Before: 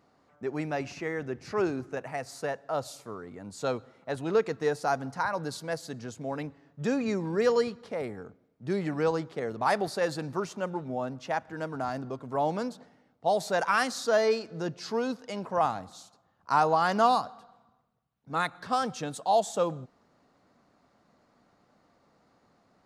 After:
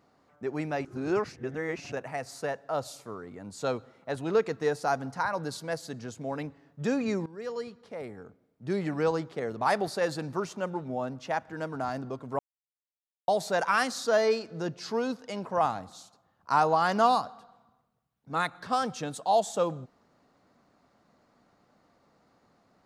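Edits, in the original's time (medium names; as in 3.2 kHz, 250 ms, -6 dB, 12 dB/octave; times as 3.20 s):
0.85–1.92 s: reverse
7.26–8.79 s: fade in, from -18 dB
12.39–13.28 s: mute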